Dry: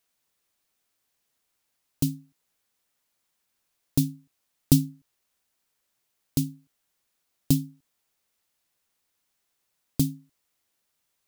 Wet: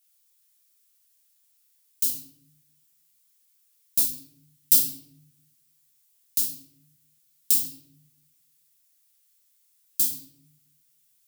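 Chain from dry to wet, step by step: differentiator; simulated room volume 150 m³, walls mixed, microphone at 1.5 m; trim +4 dB

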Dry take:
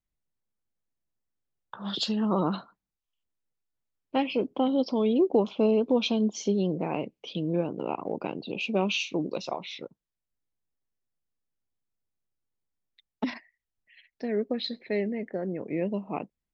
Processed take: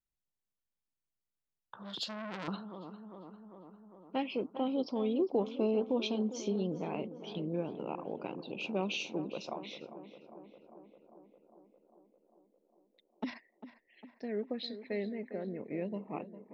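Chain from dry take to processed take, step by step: on a send: tape echo 401 ms, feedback 78%, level -11 dB, low-pass 1.7 kHz; 1.83–2.48 s: on the sum: transformer saturation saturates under 2.4 kHz; trim -8 dB

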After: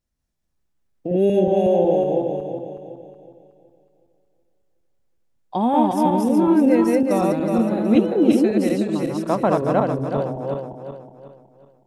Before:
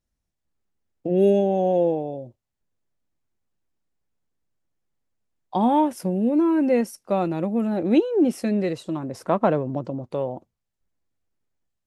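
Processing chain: backward echo that repeats 185 ms, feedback 62%, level -0.5 dB

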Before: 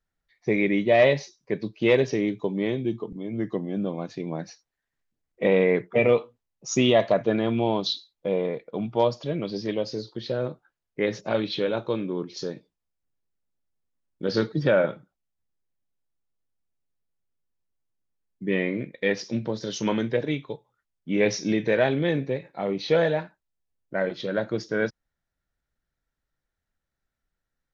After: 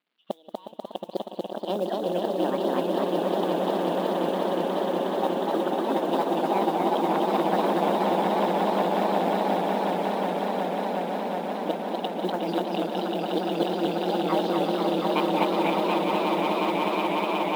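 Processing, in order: crackle 120 per s -56 dBFS; steep low-pass 2.7 kHz 48 dB/octave; wide varispeed 1.58×; inverted gate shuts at -15 dBFS, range -34 dB; echo with a slow build-up 181 ms, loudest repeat 8, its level -5 dB; modulation noise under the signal 28 dB; brick-wall FIR high-pass 160 Hz; modulated delay 243 ms, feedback 72%, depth 122 cents, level -3 dB

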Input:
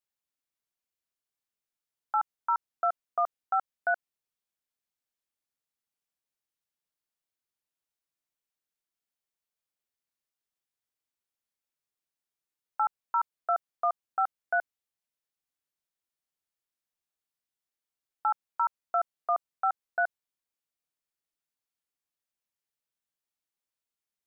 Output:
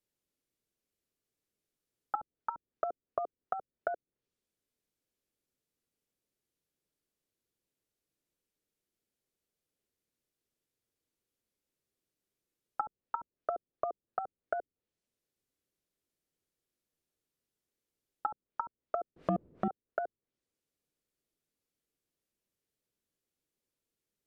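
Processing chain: 19.16–19.68 s: power-law waveshaper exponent 0.5; resonant low shelf 610 Hz +9.5 dB, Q 1.5; low-pass that closes with the level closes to 410 Hz, closed at -29 dBFS; trim +1 dB

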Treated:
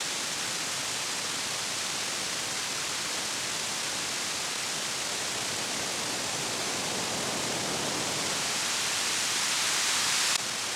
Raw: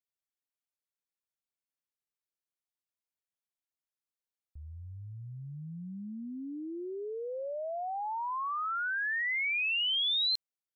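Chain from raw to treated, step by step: spectral levelling over time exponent 0.2; noise-vocoded speech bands 2; trim -1.5 dB

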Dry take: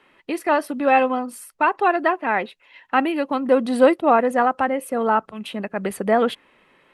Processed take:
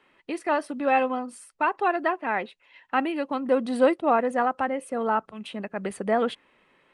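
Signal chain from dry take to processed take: resampled via 22.05 kHz; trim -5.5 dB

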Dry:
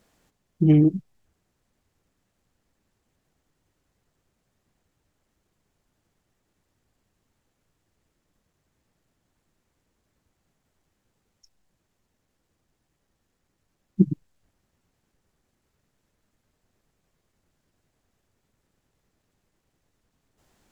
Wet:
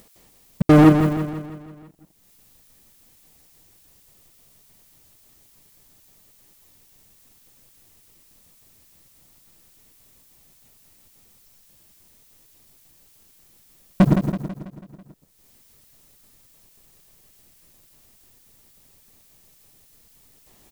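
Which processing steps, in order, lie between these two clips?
partial rectifier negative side -3 dB; band-stop 1.5 kHz, Q 5.5; on a send at -18.5 dB: reverberation RT60 0.40 s, pre-delay 86 ms; on the sum: trance gate "x.xxx.xx.xx" 195 bpm -60 dB; added noise blue -68 dBFS; waveshaping leveller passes 5; feedback delay 164 ms, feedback 50%, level -7.5 dB; upward compressor, threshold -37 dBFS

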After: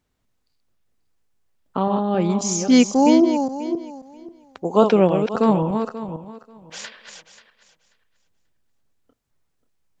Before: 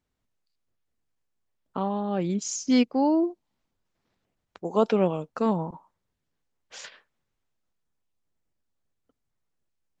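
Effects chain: backward echo that repeats 268 ms, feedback 41%, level -6.5 dB; trim +7 dB

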